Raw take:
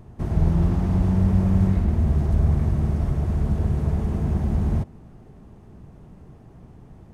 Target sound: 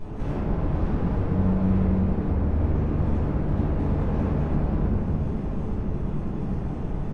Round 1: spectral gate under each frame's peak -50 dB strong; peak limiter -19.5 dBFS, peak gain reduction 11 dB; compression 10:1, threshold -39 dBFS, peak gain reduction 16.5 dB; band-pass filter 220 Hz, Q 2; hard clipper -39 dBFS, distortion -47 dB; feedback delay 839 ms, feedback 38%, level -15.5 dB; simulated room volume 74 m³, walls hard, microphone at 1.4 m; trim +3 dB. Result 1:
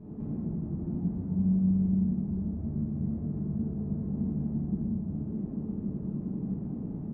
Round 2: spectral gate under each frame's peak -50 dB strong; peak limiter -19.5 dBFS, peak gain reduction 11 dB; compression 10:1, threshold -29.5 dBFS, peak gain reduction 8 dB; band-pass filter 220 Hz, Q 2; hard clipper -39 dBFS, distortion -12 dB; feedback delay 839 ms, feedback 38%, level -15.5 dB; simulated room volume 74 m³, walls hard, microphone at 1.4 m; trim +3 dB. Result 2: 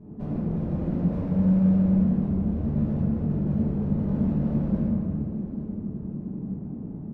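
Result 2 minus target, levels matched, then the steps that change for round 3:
250 Hz band +3.0 dB
remove: band-pass filter 220 Hz, Q 2

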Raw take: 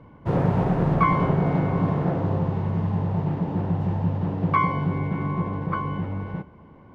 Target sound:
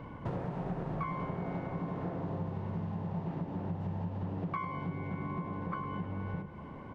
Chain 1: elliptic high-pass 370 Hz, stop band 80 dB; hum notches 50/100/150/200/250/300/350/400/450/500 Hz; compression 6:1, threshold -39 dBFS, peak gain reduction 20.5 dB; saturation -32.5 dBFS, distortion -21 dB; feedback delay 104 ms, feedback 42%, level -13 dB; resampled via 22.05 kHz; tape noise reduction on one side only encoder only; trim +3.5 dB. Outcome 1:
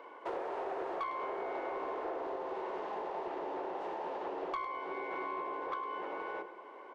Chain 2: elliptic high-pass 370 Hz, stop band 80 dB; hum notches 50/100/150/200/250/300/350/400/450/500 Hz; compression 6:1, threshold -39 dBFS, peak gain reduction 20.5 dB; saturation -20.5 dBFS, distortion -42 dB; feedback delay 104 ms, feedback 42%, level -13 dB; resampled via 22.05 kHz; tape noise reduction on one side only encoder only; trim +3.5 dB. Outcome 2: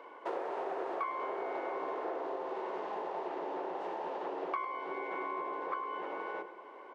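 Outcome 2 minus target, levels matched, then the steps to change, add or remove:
500 Hz band +6.0 dB
remove: elliptic high-pass 370 Hz, stop band 80 dB

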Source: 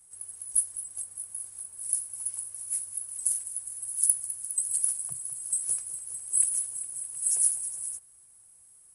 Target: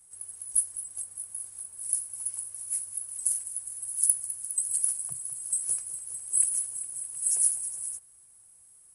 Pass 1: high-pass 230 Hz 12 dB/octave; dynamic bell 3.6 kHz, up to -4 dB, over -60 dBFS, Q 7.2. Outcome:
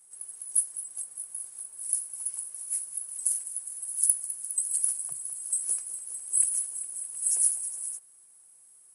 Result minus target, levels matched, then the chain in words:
250 Hz band -3.5 dB
dynamic bell 3.6 kHz, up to -4 dB, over -60 dBFS, Q 7.2

